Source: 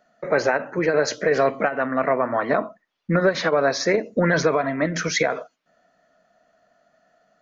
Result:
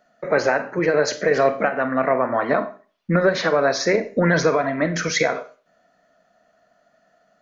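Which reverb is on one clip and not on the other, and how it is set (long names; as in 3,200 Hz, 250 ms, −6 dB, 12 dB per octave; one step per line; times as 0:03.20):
four-comb reverb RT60 0.38 s, combs from 31 ms, DRR 11 dB
level +1 dB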